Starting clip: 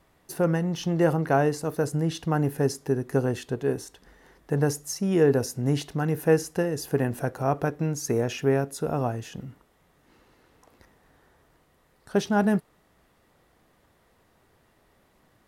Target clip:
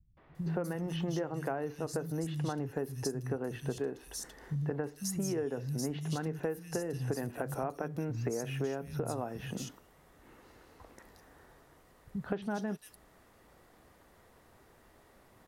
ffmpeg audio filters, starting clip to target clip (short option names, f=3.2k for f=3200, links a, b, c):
-filter_complex "[0:a]acrossover=split=150|3200[a][b][c];[b]adelay=170[d];[c]adelay=350[e];[a][d][e]amix=inputs=3:normalize=0,acompressor=threshold=-34dB:ratio=10,volume=2.5dB"